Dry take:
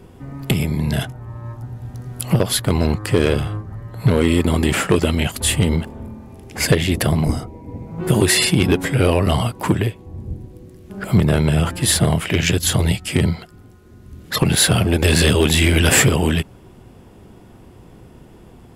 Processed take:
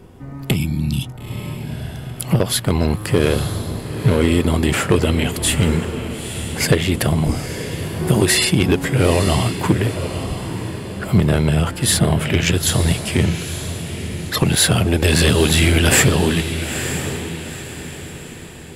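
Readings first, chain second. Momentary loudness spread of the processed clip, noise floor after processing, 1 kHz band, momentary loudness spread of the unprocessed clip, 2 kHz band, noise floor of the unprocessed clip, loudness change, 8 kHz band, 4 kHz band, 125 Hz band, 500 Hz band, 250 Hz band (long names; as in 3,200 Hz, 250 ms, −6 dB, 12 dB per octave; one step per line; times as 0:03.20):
14 LU, −33 dBFS, +0.5 dB, 18 LU, +0.5 dB, −45 dBFS, −0.5 dB, +0.5 dB, +0.5 dB, +0.5 dB, +0.5 dB, +0.5 dB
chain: feedback delay with all-pass diffusion 918 ms, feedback 41%, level −9 dB
healed spectral selection 0:00.59–0:01.06, 360–2,200 Hz after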